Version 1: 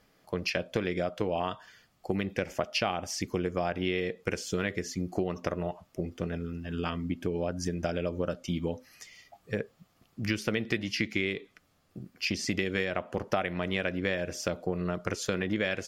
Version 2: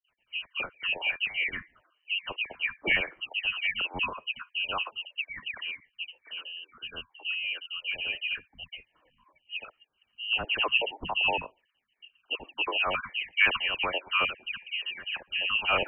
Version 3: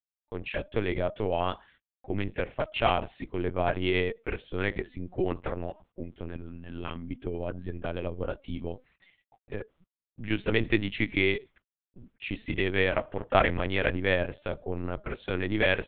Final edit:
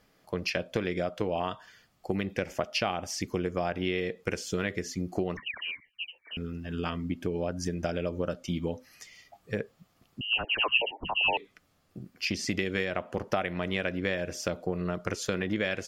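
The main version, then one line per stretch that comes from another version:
1
5.37–6.37 from 2
10.21–11.37 from 2
not used: 3

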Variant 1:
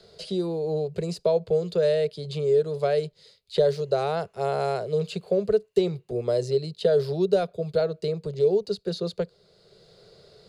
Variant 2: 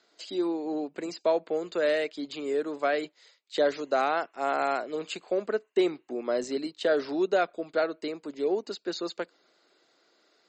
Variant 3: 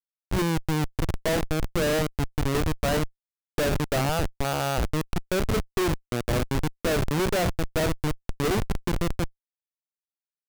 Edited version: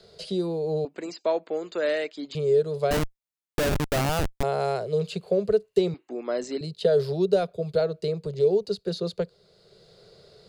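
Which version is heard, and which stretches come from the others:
1
0.85–2.35 from 2
2.91–4.43 from 3
5.94–6.61 from 2

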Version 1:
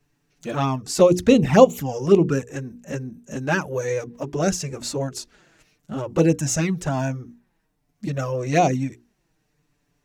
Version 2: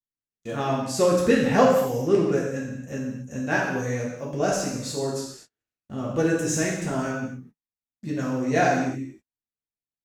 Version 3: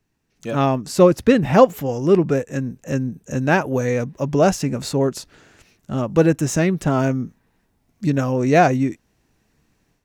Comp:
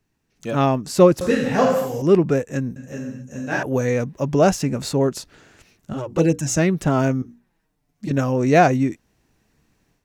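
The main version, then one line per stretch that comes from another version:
3
1.21–2.02 from 2
2.76–3.63 from 2
5.93–6.57 from 1
7.22–8.11 from 1

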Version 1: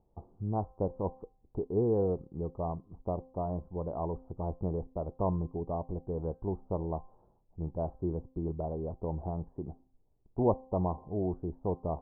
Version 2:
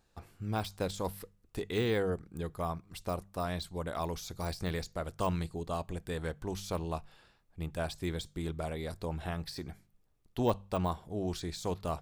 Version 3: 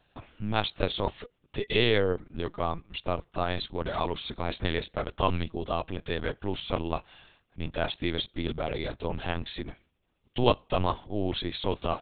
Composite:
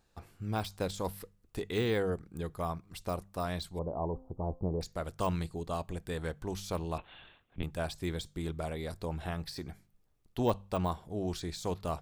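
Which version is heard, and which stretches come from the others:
2
3.79–4.81 from 1
6.98–7.63 from 3

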